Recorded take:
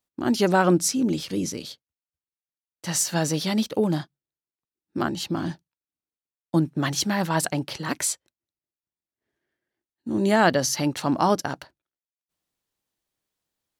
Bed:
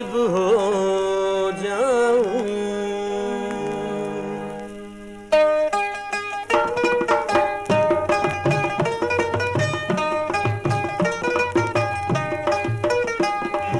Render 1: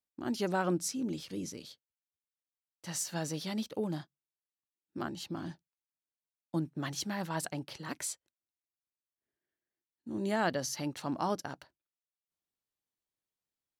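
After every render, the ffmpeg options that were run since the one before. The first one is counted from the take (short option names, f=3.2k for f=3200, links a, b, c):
-af "volume=-12dB"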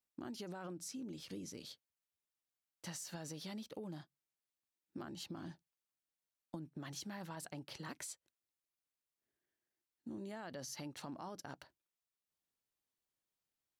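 -af "alimiter=level_in=4.5dB:limit=-24dB:level=0:latency=1:release=45,volume=-4.5dB,acompressor=threshold=-44dB:ratio=6"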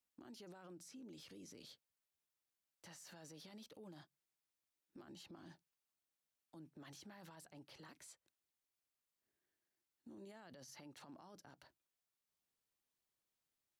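-filter_complex "[0:a]acrossover=split=280|2600[a][b][c];[a]acompressor=threshold=-57dB:ratio=4[d];[b]acompressor=threshold=-49dB:ratio=4[e];[c]acompressor=threshold=-54dB:ratio=4[f];[d][e][f]amix=inputs=3:normalize=0,alimiter=level_in=25dB:limit=-24dB:level=0:latency=1:release=45,volume=-25dB"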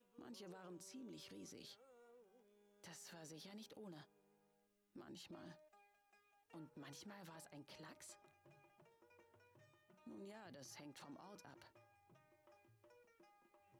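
-filter_complex "[1:a]volume=-49.5dB[a];[0:a][a]amix=inputs=2:normalize=0"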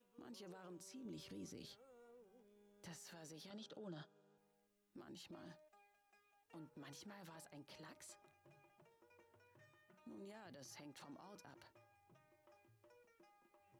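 -filter_complex "[0:a]asettb=1/sr,asplit=3[a][b][c];[a]atrim=end=1.054[d];[b]atrim=start=1.05:end=3,asetpts=PTS-STARTPTS,afade=t=in:d=0.004:c=qsin,afade=t=out:st=1.946:d=0.004:c=qsin,lowshelf=f=270:g=9[e];[c]atrim=start=2.996[f];[d][e]acrossfade=d=0.004:c1=hsin:c2=qsin[g];[g][f]acrossfade=d=0.004:c1=qsin:c2=hsin,asettb=1/sr,asplit=3[h][i][j];[h]atrim=end=3.504[k];[i]atrim=start=3.5:end=4.38,asetpts=PTS-STARTPTS,afade=t=in:d=0.004:c=qsin,afade=t=out:st=0.876:d=0.004:c=qsin,highpass=110,equalizer=f=160:t=q:w=4:g=9,equalizer=f=350:t=q:w=4:g=5,equalizer=f=600:t=q:w=4:g=7,equalizer=f=1.4k:t=q:w=4:g=10,equalizer=f=2.2k:t=q:w=4:g=-8,equalizer=f=3.4k:t=q:w=4:g=7,lowpass=f=7.7k:w=0.5412,lowpass=f=7.7k:w=1.3066[l];[j]atrim=start=4.376[m];[k][l]acrossfade=d=0.004:c1=hsin:c2=qsin[n];[n][m]acrossfade=d=0.004:c1=qsin:c2=hsin,asettb=1/sr,asplit=3[o][p][q];[o]atrim=end=9.484[r];[p]atrim=start=9.48:end=10,asetpts=PTS-STARTPTS,afade=t=in:d=0.004:c=qsin,afade=t=out:st=0.516:d=0.004:c=qsin,equalizer=f=1.7k:t=o:w=0.77:g=6[s];[q]atrim=start=9.996[t];[r][s]acrossfade=d=0.004:c1=hsin:c2=qsin[u];[u][t]acrossfade=d=0.004:c1=qsin:c2=hsin"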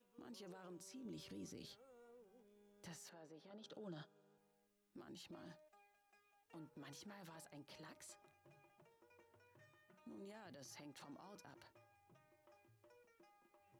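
-filter_complex "[0:a]asettb=1/sr,asplit=3[a][b][c];[a]atrim=end=3.094[d];[b]atrim=start=3.09:end=3.64,asetpts=PTS-STARTPTS,afade=t=in:d=0.004:c=qsin,afade=t=out:st=0.546:d=0.004:c=qsin,bandpass=f=590:t=q:w=0.62[e];[c]atrim=start=3.636[f];[d][e]acrossfade=d=0.004:c1=hsin:c2=qsin[g];[g][f]acrossfade=d=0.004:c1=qsin:c2=hsin"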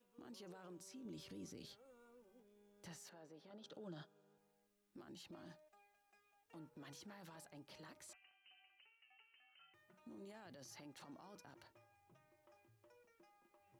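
-filter_complex "[0:a]asettb=1/sr,asplit=3[a][b][c];[a]atrim=end=1.854[d];[b]atrim=start=1.85:end=2.4,asetpts=PTS-STARTPTS,afade=t=in:d=0.004:c=qsin,afade=t=out:st=0.546:d=0.004:c=qsin,aecho=1:1:3.4:0.65,atrim=end_sample=24255[e];[c]atrim=start=2.396[f];[d][e]acrossfade=d=0.004:c1=hsin:c2=qsin[g];[g][f]acrossfade=d=0.004:c1=qsin:c2=hsin,asettb=1/sr,asplit=3[h][i][j];[h]atrim=end=8.134[k];[i]atrim=start=8.13:end=9.74,asetpts=PTS-STARTPTS,afade=t=in:d=0.004:c=qsin,afade=t=out:st=1.606:d=0.004:c=qsin,lowpass=f=2.7k:t=q:w=0.5098,lowpass=f=2.7k:t=q:w=0.6013,lowpass=f=2.7k:t=q:w=0.9,lowpass=f=2.7k:t=q:w=2.563,afreqshift=-3200[l];[j]atrim=start=9.736[m];[k][l]acrossfade=d=0.004:c1=hsin:c2=qsin[n];[n][m]acrossfade=d=0.004:c1=qsin:c2=hsin"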